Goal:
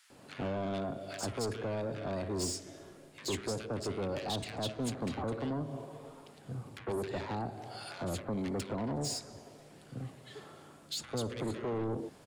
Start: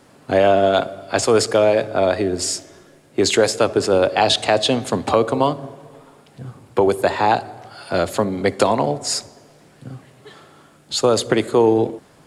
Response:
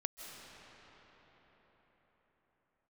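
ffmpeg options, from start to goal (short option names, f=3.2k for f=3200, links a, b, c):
-filter_complex "[0:a]acrossover=split=310[a][b];[b]acompressor=threshold=-27dB:ratio=6[c];[a][c]amix=inputs=2:normalize=0,asoftclip=type=tanh:threshold=-26dB,acrossover=split=1500[d][e];[d]adelay=100[f];[f][e]amix=inputs=2:normalize=0,volume=-5.5dB"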